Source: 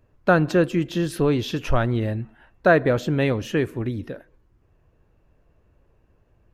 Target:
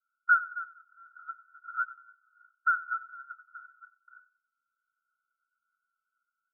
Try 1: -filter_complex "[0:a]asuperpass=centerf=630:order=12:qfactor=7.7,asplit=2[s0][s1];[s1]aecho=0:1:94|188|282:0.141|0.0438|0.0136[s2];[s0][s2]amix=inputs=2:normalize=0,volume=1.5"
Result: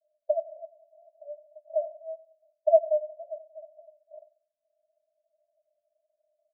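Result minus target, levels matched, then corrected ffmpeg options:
1 kHz band -8.0 dB
-filter_complex "[0:a]asuperpass=centerf=1400:order=12:qfactor=7.7,asplit=2[s0][s1];[s1]aecho=0:1:94|188|282:0.141|0.0438|0.0136[s2];[s0][s2]amix=inputs=2:normalize=0,volume=1.5"

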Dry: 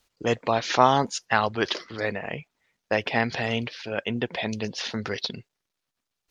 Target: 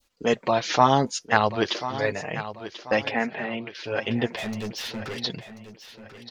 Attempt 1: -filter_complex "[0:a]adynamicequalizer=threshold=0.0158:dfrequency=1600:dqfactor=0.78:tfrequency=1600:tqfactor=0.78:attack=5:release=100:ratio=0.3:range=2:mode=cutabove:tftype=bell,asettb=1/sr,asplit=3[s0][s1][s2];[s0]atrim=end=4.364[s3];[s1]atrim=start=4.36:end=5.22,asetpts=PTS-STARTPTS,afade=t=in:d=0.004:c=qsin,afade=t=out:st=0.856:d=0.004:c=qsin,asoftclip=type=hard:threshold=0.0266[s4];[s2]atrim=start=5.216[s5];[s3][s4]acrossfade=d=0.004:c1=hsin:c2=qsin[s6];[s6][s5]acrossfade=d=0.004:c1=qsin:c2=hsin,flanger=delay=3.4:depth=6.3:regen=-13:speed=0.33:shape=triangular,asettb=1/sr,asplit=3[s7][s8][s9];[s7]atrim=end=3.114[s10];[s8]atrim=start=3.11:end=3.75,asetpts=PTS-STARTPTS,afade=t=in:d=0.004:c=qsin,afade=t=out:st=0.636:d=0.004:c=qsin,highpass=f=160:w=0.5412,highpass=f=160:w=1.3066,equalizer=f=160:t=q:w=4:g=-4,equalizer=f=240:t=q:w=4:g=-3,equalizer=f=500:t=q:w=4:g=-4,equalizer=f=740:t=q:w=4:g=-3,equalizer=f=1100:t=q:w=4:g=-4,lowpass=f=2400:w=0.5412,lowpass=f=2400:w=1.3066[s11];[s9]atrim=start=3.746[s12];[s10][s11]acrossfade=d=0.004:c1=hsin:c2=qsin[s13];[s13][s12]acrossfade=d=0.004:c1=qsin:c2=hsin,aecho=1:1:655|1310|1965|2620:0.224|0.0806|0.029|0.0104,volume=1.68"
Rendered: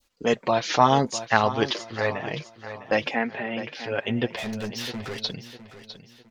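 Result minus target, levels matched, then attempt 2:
echo 383 ms early
-filter_complex "[0:a]adynamicequalizer=threshold=0.0158:dfrequency=1600:dqfactor=0.78:tfrequency=1600:tqfactor=0.78:attack=5:release=100:ratio=0.3:range=2:mode=cutabove:tftype=bell,asettb=1/sr,asplit=3[s0][s1][s2];[s0]atrim=end=4.364[s3];[s1]atrim=start=4.36:end=5.22,asetpts=PTS-STARTPTS,afade=t=in:d=0.004:c=qsin,afade=t=out:st=0.856:d=0.004:c=qsin,asoftclip=type=hard:threshold=0.0266[s4];[s2]atrim=start=5.216[s5];[s3][s4]acrossfade=d=0.004:c1=hsin:c2=qsin[s6];[s6][s5]acrossfade=d=0.004:c1=qsin:c2=hsin,flanger=delay=3.4:depth=6.3:regen=-13:speed=0.33:shape=triangular,asettb=1/sr,asplit=3[s7][s8][s9];[s7]atrim=end=3.114[s10];[s8]atrim=start=3.11:end=3.75,asetpts=PTS-STARTPTS,afade=t=in:d=0.004:c=qsin,afade=t=out:st=0.636:d=0.004:c=qsin,highpass=f=160:w=0.5412,highpass=f=160:w=1.3066,equalizer=f=160:t=q:w=4:g=-4,equalizer=f=240:t=q:w=4:g=-3,equalizer=f=500:t=q:w=4:g=-4,equalizer=f=740:t=q:w=4:g=-3,equalizer=f=1100:t=q:w=4:g=-4,lowpass=f=2400:w=0.5412,lowpass=f=2400:w=1.3066[s11];[s9]atrim=start=3.746[s12];[s10][s11]acrossfade=d=0.004:c1=hsin:c2=qsin[s13];[s13][s12]acrossfade=d=0.004:c1=qsin:c2=hsin,aecho=1:1:1038|2076|3114|4152:0.224|0.0806|0.029|0.0104,volume=1.68"

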